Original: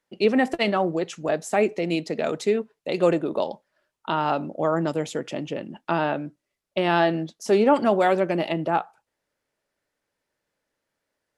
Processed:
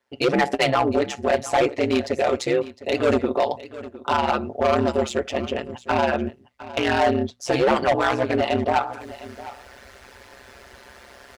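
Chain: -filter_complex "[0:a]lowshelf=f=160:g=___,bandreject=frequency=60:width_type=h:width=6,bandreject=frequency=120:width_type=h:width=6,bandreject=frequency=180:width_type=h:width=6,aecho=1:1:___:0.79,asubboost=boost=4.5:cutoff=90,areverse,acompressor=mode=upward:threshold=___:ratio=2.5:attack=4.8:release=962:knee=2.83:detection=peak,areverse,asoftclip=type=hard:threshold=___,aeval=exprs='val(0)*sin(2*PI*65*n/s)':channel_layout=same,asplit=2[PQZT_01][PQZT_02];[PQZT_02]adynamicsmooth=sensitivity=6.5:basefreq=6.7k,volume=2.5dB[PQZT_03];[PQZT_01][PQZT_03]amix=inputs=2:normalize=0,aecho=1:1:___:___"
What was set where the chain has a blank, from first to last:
-10.5, 6.3, -23dB, -19.5dB, 708, 0.15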